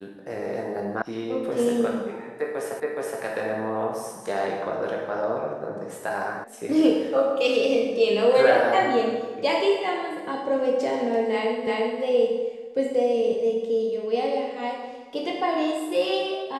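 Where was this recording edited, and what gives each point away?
0:01.02: cut off before it has died away
0:02.80: the same again, the last 0.42 s
0:06.44: cut off before it has died away
0:11.67: the same again, the last 0.35 s

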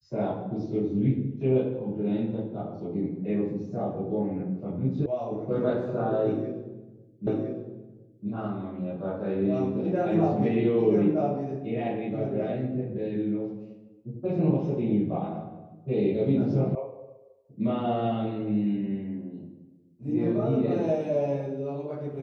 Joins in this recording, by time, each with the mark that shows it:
0:05.06: cut off before it has died away
0:07.27: the same again, the last 1.01 s
0:16.75: cut off before it has died away

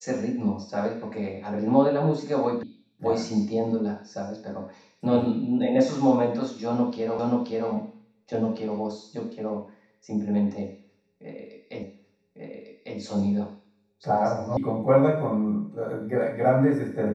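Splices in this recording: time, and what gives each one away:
0:02.63: cut off before it has died away
0:07.19: the same again, the last 0.53 s
0:11.83: the same again, the last 1.15 s
0:14.57: cut off before it has died away

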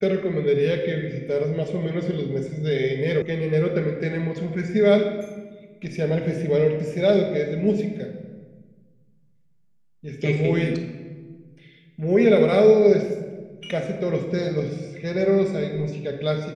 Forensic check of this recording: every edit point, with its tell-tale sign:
0:03.22: cut off before it has died away

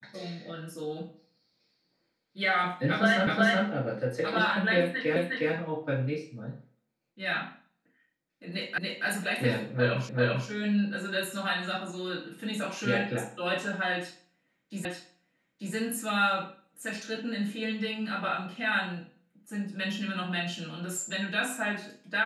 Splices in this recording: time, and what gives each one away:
0:03.27: the same again, the last 0.37 s
0:05.16: the same again, the last 0.36 s
0:08.78: the same again, the last 0.28 s
0:10.09: the same again, the last 0.39 s
0:14.85: the same again, the last 0.89 s

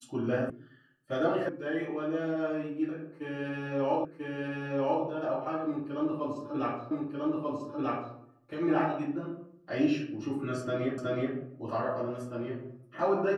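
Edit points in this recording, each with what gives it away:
0:00.50: cut off before it has died away
0:01.49: cut off before it has died away
0:04.05: the same again, the last 0.99 s
0:06.91: the same again, the last 1.24 s
0:10.98: the same again, the last 0.37 s

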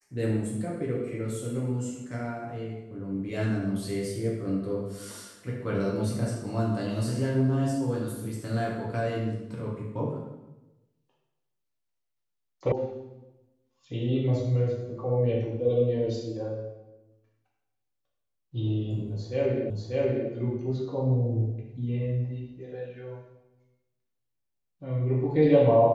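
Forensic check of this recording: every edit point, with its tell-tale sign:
0:12.72: cut off before it has died away
0:19.70: the same again, the last 0.59 s

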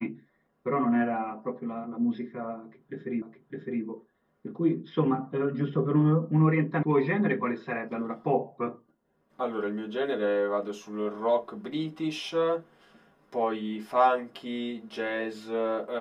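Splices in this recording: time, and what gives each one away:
0:03.22: the same again, the last 0.61 s
0:06.83: cut off before it has died away

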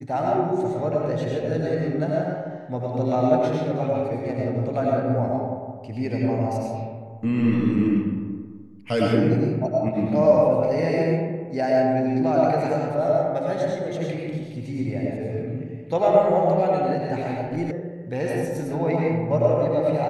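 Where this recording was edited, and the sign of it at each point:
0:17.71: cut off before it has died away

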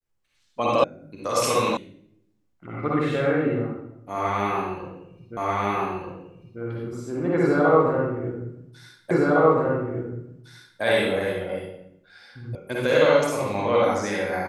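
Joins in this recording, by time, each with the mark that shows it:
0:00.84: cut off before it has died away
0:01.77: cut off before it has died away
0:05.37: the same again, the last 1.24 s
0:09.11: the same again, the last 1.71 s
0:12.55: cut off before it has died away

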